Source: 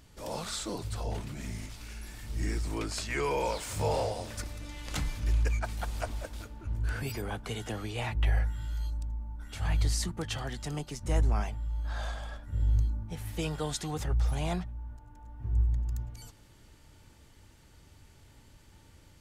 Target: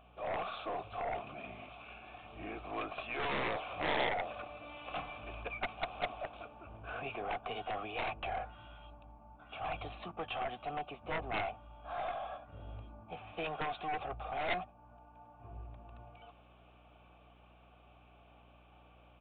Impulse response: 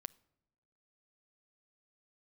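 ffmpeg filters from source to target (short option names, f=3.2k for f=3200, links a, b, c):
-filter_complex "[0:a]asplit=3[a][b][c];[a]bandpass=f=730:t=q:w=8,volume=0dB[d];[b]bandpass=f=1.09k:t=q:w=8,volume=-6dB[e];[c]bandpass=f=2.44k:t=q:w=8,volume=-9dB[f];[d][e][f]amix=inputs=3:normalize=0,aeval=exprs='val(0)+0.000158*(sin(2*PI*60*n/s)+sin(2*PI*2*60*n/s)/2+sin(2*PI*3*60*n/s)/3+sin(2*PI*4*60*n/s)/4+sin(2*PI*5*60*n/s)/5)':c=same,aeval=exprs='0.0473*(cos(1*acos(clip(val(0)/0.0473,-1,1)))-cos(1*PI/2))+0.0075*(cos(4*acos(clip(val(0)/0.0473,-1,1)))-cos(4*PI/2))+0.0075*(cos(6*acos(clip(val(0)/0.0473,-1,1)))-cos(6*PI/2))+0.015*(cos(7*acos(clip(val(0)/0.0473,-1,1)))-cos(7*PI/2))':c=same,aresample=8000,asoftclip=type=tanh:threshold=-37.5dB,aresample=44100,volume=12dB"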